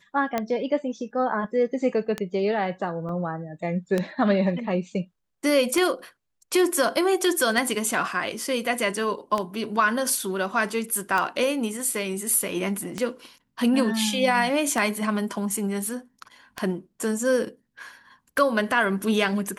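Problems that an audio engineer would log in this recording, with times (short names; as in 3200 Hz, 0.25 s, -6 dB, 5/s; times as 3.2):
tick 33 1/3 rpm -11 dBFS
3.09 gap 2.3 ms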